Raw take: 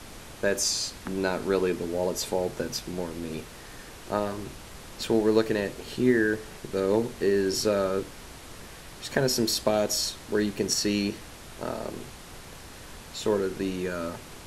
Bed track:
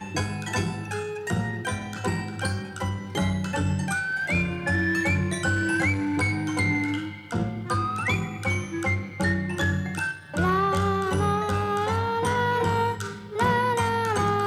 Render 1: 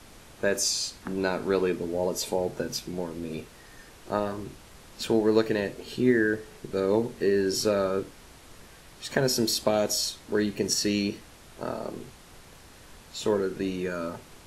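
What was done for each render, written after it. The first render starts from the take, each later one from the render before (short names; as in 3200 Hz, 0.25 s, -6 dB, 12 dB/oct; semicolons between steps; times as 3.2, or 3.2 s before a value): noise print and reduce 6 dB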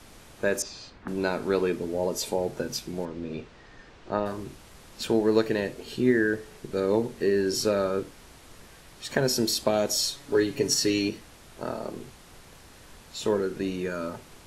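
0.62–1.08 LPF 2200 Hz; 3.05–4.26 Gaussian blur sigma 1.6 samples; 9.95–11.09 comb 7.1 ms, depth 73%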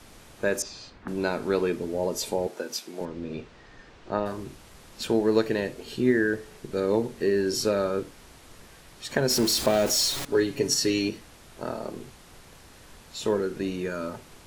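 2.47–3.01 Bessel high-pass 350 Hz, order 4; 9.3–10.25 zero-crossing step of -27.5 dBFS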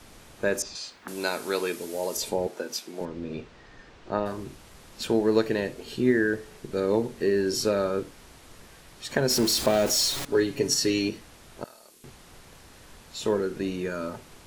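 0.75–2.17 RIAA curve recording; 11.64–12.04 pre-emphasis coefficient 0.97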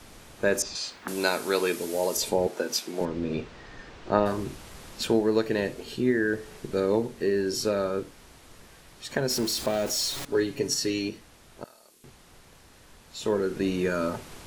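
vocal rider within 5 dB 0.5 s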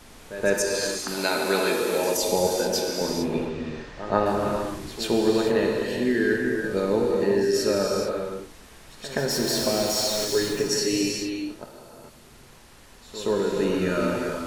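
pre-echo 0.125 s -14 dB; non-linear reverb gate 0.47 s flat, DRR -1 dB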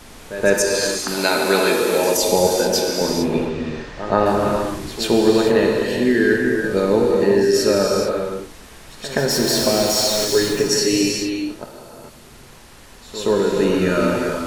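gain +6.5 dB; limiter -2 dBFS, peak gain reduction 3 dB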